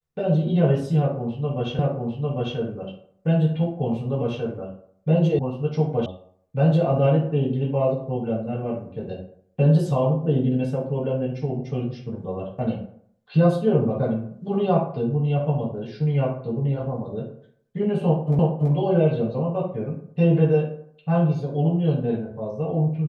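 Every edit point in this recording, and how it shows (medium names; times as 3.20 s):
1.79 s: repeat of the last 0.8 s
5.39 s: sound stops dead
6.06 s: sound stops dead
18.39 s: repeat of the last 0.33 s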